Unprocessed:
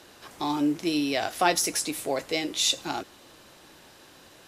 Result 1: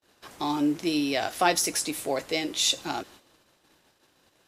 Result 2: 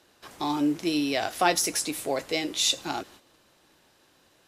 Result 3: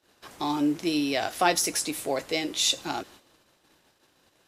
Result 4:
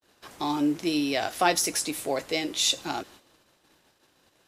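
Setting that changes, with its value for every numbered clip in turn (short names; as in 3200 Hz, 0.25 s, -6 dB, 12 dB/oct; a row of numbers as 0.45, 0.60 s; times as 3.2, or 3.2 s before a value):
gate, range: -36, -10, -22, -49 dB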